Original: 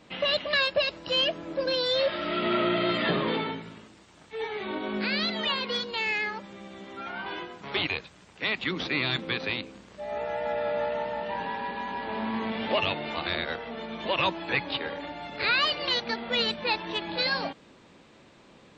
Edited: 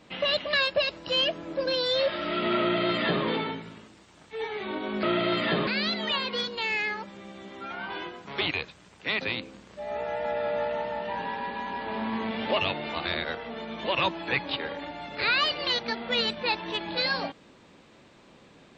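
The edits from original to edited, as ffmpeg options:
-filter_complex "[0:a]asplit=4[s0][s1][s2][s3];[s0]atrim=end=5.032[s4];[s1]atrim=start=2.598:end=3.242[s5];[s2]atrim=start=5.028:end=8.572[s6];[s3]atrim=start=9.418[s7];[s4][s5]acrossfade=d=0.004:c1=hsin:c2=hsin[s8];[s8][s6]acrossfade=d=0.004:c1=hsin:c2=hsin[s9];[s9][s7]acrossfade=d=0.004:c1=hsin:c2=hsin"

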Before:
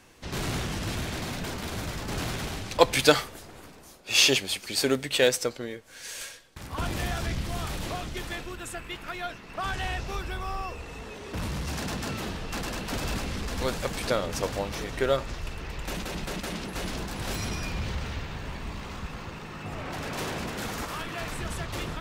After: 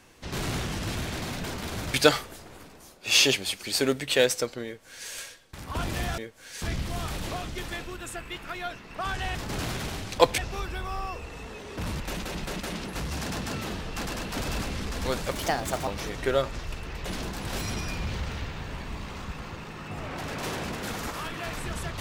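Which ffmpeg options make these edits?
-filter_complex "[0:a]asplit=11[s0][s1][s2][s3][s4][s5][s6][s7][s8][s9][s10];[s0]atrim=end=1.942[s11];[s1]atrim=start=2.968:end=7.212[s12];[s2]atrim=start=5.678:end=6.122[s13];[s3]atrim=start=7.208:end=9.942[s14];[s4]atrim=start=1.938:end=2.972[s15];[s5]atrim=start=9.938:end=11.562[s16];[s6]atrim=start=15.798:end=16.802[s17];[s7]atrim=start=11.558:end=13.874[s18];[s8]atrim=start=13.87:end=14.62,asetpts=PTS-STARTPTS,asetrate=58653,aresample=44100,atrim=end_sample=24868,asetpts=PTS-STARTPTS[s19];[s9]atrim=start=14.616:end=15.802[s20];[s10]atrim=start=16.798[s21];[s11][s12]acrossfade=d=0.004:c1=hsin:c2=hsin[s22];[s22][s13]acrossfade=d=0.004:c1=hsin:c2=hsin[s23];[s23][s14]acrossfade=d=0.004:c1=hsin:c2=hsin[s24];[s24][s15]acrossfade=d=0.004:c1=hsin:c2=hsin[s25];[s25][s16]acrossfade=d=0.004:c1=hsin:c2=hsin[s26];[s26][s17]acrossfade=d=0.004:c1=hsin:c2=hsin[s27];[s27][s18]acrossfade=d=0.004:c1=hsin:c2=hsin[s28];[s28][s19]acrossfade=d=0.004:c1=hsin:c2=hsin[s29];[s29][s20]acrossfade=d=0.004:c1=hsin:c2=hsin[s30];[s30][s21]acrossfade=d=0.004:c1=hsin:c2=hsin"

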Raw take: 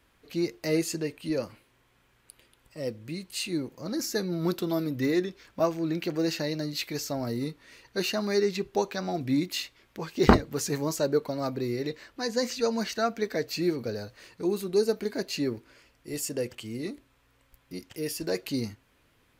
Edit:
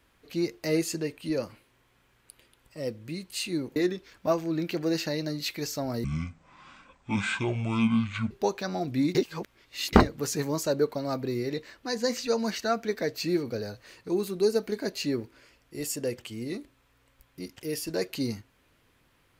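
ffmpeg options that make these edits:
-filter_complex "[0:a]asplit=6[s0][s1][s2][s3][s4][s5];[s0]atrim=end=3.762[s6];[s1]atrim=start=5.088:end=7.374[s7];[s2]atrim=start=7.37:end=8.64,asetpts=PTS-STARTPTS,asetrate=24696,aresample=44100,atrim=end_sample=100012,asetpts=PTS-STARTPTS[s8];[s3]atrim=start=8.636:end=9.482[s9];[s4]atrim=start=9.478:end=10.262,asetpts=PTS-STARTPTS,areverse[s10];[s5]atrim=start=10.258[s11];[s6][s7]acrossfade=d=0.004:c1=hsin:c2=hsin[s12];[s12][s8]acrossfade=d=0.004:c1=hsin:c2=hsin[s13];[s13][s9]acrossfade=d=0.004:c1=hsin:c2=hsin[s14];[s14][s10]acrossfade=d=0.004:c1=hsin:c2=hsin[s15];[s15][s11]acrossfade=d=0.004:c1=hsin:c2=hsin"

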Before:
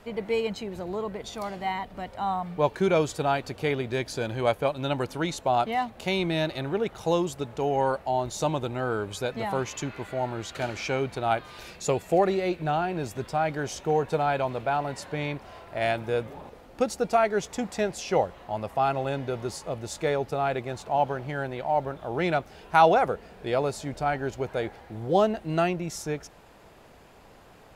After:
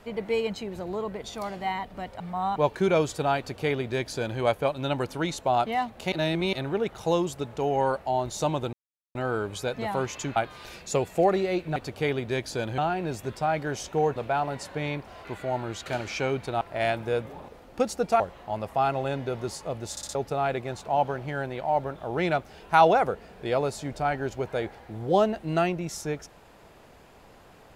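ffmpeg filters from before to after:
-filter_complex "[0:a]asplit=17[s0][s1][s2][s3][s4][s5][s6][s7][s8][s9][s10][s11][s12][s13][s14][s15][s16];[s0]atrim=end=2.202[s17];[s1]atrim=start=2.198:end=2.562,asetpts=PTS-STARTPTS,areverse[s18];[s2]atrim=start=2.558:end=6.122[s19];[s3]atrim=start=6.118:end=6.532,asetpts=PTS-STARTPTS,areverse[s20];[s4]atrim=start=6.528:end=8.73,asetpts=PTS-STARTPTS,afade=t=out:st=2.198:d=0.004:c=hsin,apad=pad_dur=0.42[s21];[s5]atrim=start=8.73:end=9.942,asetpts=PTS-STARTPTS,afade=t=in:d=0.004:c=hsin[s22];[s6]atrim=start=11.298:end=12.702[s23];[s7]atrim=start=3.378:end=4.402[s24];[s8]atrim=start=12.698:end=14.082[s25];[s9]atrim=start=14.528:end=15.622[s26];[s10]atrim=start=9.938:end=11.302[s27];[s11]atrim=start=15.618:end=17.212[s28];[s12]atrim=start=18.208:end=19.982[s29];[s13]atrim=start=19.918:end=19.982[s30];[s14]atrim=start=19.918:end=19.982[s31];[s15]atrim=start=19.918:end=19.982[s32];[s16]atrim=start=20.158[s33];[s17][s18]acrossfade=d=0.004:c1=hsin:c2=hsin[s34];[s34][s19]acrossfade=d=0.004:c1=hsin:c2=hsin[s35];[s35][s20]acrossfade=d=0.004:c1=hsin:c2=hsin[s36];[s21][s22]concat=n=2:v=0:a=1[s37];[s36][s37]acrossfade=d=0.004:c1=hsin:c2=hsin[s38];[s38][s23]acrossfade=d=0.004:c1=hsin:c2=hsin[s39];[s39][s24]acrossfade=d=0.004:c1=hsin:c2=hsin[s40];[s40][s25]acrossfade=d=0.004:c1=hsin:c2=hsin[s41];[s41][s26]acrossfade=d=0.004:c1=hsin:c2=hsin[s42];[s42][s27]acrossfade=d=0.004:c1=hsin:c2=hsin[s43];[s43][s28]acrossfade=d=0.004:c1=hsin:c2=hsin[s44];[s44][s29]acrossfade=d=0.004:c1=hsin:c2=hsin[s45];[s45][s30]acrossfade=d=0.004:c1=hsin:c2=hsin[s46];[s46][s31]acrossfade=d=0.004:c1=hsin:c2=hsin[s47];[s47][s32]acrossfade=d=0.004:c1=hsin:c2=hsin[s48];[s48][s33]acrossfade=d=0.004:c1=hsin:c2=hsin"

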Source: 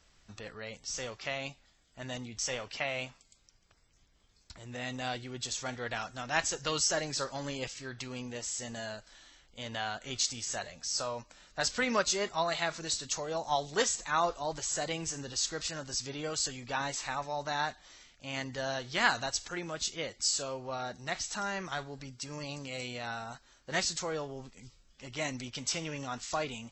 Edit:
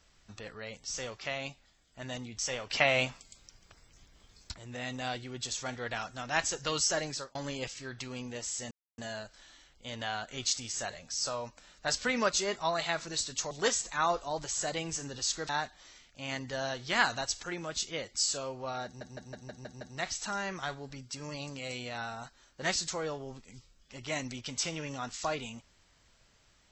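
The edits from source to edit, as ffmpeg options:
-filter_complex "[0:a]asplit=13[s0][s1][s2][s3][s4][s5][s6][s7][s8][s9][s10][s11][s12];[s0]atrim=end=2.702[s13];[s1]atrim=start=2.698:end=4.542,asetpts=PTS-STARTPTS,volume=2.66[s14];[s2]atrim=start=4.538:end=7.35,asetpts=PTS-STARTPTS,afade=t=out:st=2.532:d=0.28[s15];[s3]atrim=start=7.35:end=8.71,asetpts=PTS-STARTPTS,afade=t=in:d=0.004:c=hsin,afade=t=out:st=1.356:d=0.004:c=hsin,apad=pad_dur=0.27[s16];[s4]atrim=start=8.71:end=13.242,asetpts=PTS-STARTPTS,afade=t=in:d=0.004:c=hsin[s17];[s5]atrim=start=13.648:end=15.632[s18];[s6]atrim=start=17.538:end=21.062[s19];[s7]atrim=start=20.898:end=21.062[s20];[s8]atrim=start=20.898:end=21.062[s21];[s9]atrim=start=20.898:end=21.062[s22];[s10]atrim=start=20.898:end=21.062[s23];[s11]atrim=start=20.898:end=21.062[s24];[s12]atrim=start=20.898[s25];[s13][s14]acrossfade=d=0.004:c1=hsin:c2=hsin[s26];[s15][s16][s17]concat=n=3:v=0:a=1[s27];[s26][s27]acrossfade=d=0.004:c1=hsin:c2=hsin[s28];[s28][s18]acrossfade=d=0.004:c1=hsin:c2=hsin[s29];[s29][s19]acrossfade=d=0.004:c1=hsin:c2=hsin[s30];[s30][s20]acrossfade=d=0.004:c1=hsin:c2=hsin[s31];[s31][s21]acrossfade=d=0.004:c1=hsin:c2=hsin[s32];[s32][s22]acrossfade=d=0.004:c1=hsin:c2=hsin[s33];[s33][s23]acrossfade=d=0.004:c1=hsin:c2=hsin[s34];[s34][s24]acrossfade=d=0.004:c1=hsin:c2=hsin[s35];[s35][s25]acrossfade=d=0.004:c1=hsin:c2=hsin"

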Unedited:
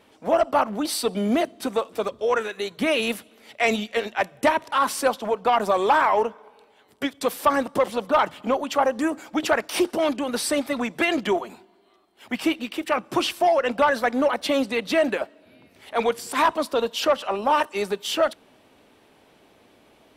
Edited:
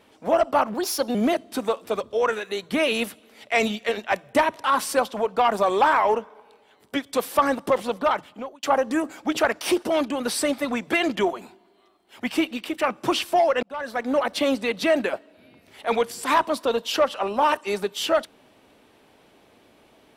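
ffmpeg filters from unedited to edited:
-filter_complex "[0:a]asplit=5[s0][s1][s2][s3][s4];[s0]atrim=end=0.744[s5];[s1]atrim=start=0.74:end=1.23,asetpts=PTS-STARTPTS,asetrate=52920,aresample=44100[s6];[s2]atrim=start=1.226:end=8.71,asetpts=PTS-STARTPTS,afade=t=out:st=6.774:d=0.71[s7];[s3]atrim=start=8.71:end=13.71,asetpts=PTS-STARTPTS,afade=t=in:d=0.004:c=hsin,afade=t=out:st=4.996:d=0.004:c=hsin[s8];[s4]atrim=start=13.71,asetpts=PTS-STARTPTS,afade=t=in:d=0.62[s9];[s5][s6]acrossfade=d=0.004:c1=hsin:c2=hsin[s10];[s7][s8][s9]concat=n=3:v=0:a=1[s11];[s10][s11]acrossfade=d=0.004:c1=hsin:c2=hsin"

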